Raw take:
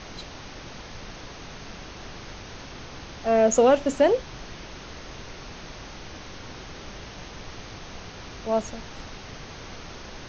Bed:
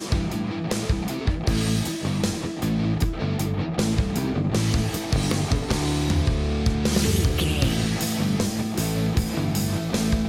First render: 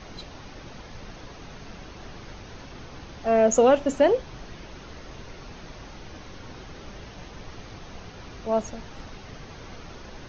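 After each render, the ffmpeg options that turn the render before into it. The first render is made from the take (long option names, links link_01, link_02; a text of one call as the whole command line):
ffmpeg -i in.wav -af "afftdn=noise_reduction=6:noise_floor=-42" out.wav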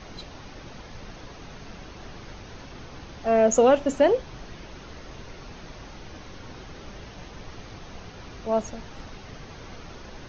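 ffmpeg -i in.wav -af anull out.wav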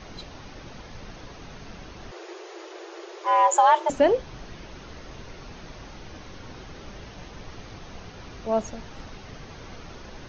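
ffmpeg -i in.wav -filter_complex "[0:a]asettb=1/sr,asplit=3[link_01][link_02][link_03];[link_01]atrim=end=2.114[link_04];[link_02]atrim=start=2.11:end=3.9,asetpts=PTS-STARTPTS,afade=type=in:duration=0.004:curve=qsin,afade=type=out:start_time=1.786:duration=0.004:curve=qsin,afreqshift=330[link_05];[link_03]atrim=start=3.896[link_06];[link_04][link_05]acrossfade=duration=0.004:curve1=hsin:curve2=qsin[link_07];[link_07][link_06]acrossfade=duration=0.004:curve1=qsin:curve2=hsin" out.wav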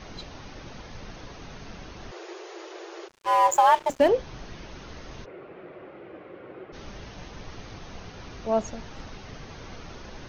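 ffmpeg -i in.wav -filter_complex "[0:a]asplit=3[link_01][link_02][link_03];[link_01]afade=type=out:start_time=3.07:duration=0.02[link_04];[link_02]aeval=exprs='sgn(val(0))*max(abs(val(0))-0.0168,0)':channel_layout=same,afade=type=in:start_time=3.07:duration=0.02,afade=type=out:start_time=4.08:duration=0.02[link_05];[link_03]afade=type=in:start_time=4.08:duration=0.02[link_06];[link_04][link_05][link_06]amix=inputs=3:normalize=0,asplit=3[link_07][link_08][link_09];[link_07]afade=type=out:start_time=5.24:duration=0.02[link_10];[link_08]highpass=220,equalizer=frequency=240:width_type=q:width=4:gain=-8,equalizer=frequency=360:width_type=q:width=4:gain=9,equalizer=frequency=540:width_type=q:width=4:gain=6,equalizer=frequency=920:width_type=q:width=4:gain=-7,equalizer=frequency=1700:width_type=q:width=4:gain=-5,lowpass=frequency=2200:width=0.5412,lowpass=frequency=2200:width=1.3066,afade=type=in:start_time=5.24:duration=0.02,afade=type=out:start_time=6.72:duration=0.02[link_11];[link_09]afade=type=in:start_time=6.72:duration=0.02[link_12];[link_10][link_11][link_12]amix=inputs=3:normalize=0" out.wav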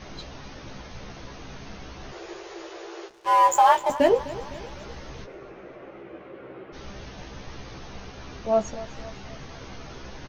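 ffmpeg -i in.wav -filter_complex "[0:a]asplit=2[link_01][link_02];[link_02]adelay=15,volume=-5dB[link_03];[link_01][link_03]amix=inputs=2:normalize=0,aecho=1:1:255|510|765|1020|1275:0.141|0.0777|0.0427|0.0235|0.0129" out.wav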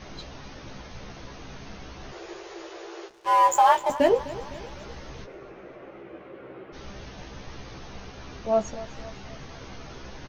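ffmpeg -i in.wav -af "volume=-1dB" out.wav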